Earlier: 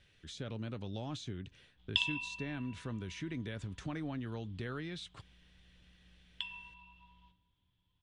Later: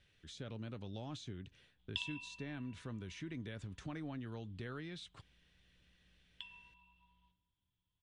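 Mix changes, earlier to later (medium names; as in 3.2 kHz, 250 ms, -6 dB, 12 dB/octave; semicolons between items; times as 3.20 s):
speech -4.5 dB; background -9.5 dB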